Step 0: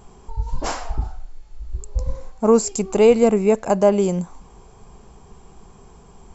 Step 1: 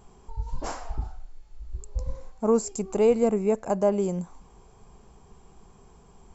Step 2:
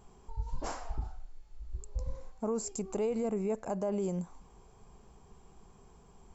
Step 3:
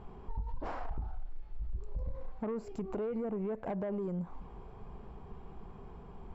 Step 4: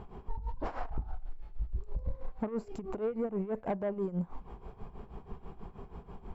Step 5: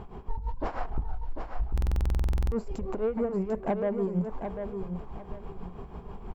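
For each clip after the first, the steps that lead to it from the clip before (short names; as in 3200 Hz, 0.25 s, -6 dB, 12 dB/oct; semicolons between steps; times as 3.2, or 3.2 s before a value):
dynamic EQ 3300 Hz, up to -6 dB, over -40 dBFS, Q 0.75; gain -7 dB
limiter -20.5 dBFS, peak gain reduction 10 dB; gain -4.5 dB
compressor 12:1, threshold -38 dBFS, peak gain reduction 11 dB; soft clip -39 dBFS, distortion -14 dB; air absorption 390 m; gain +9.5 dB
tremolo 6.2 Hz, depth 79%; gain +5 dB
on a send: feedback echo 0.746 s, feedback 26%, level -7 dB; on the sum: stuck buffer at 1.73, samples 2048, times 16; gain +4.5 dB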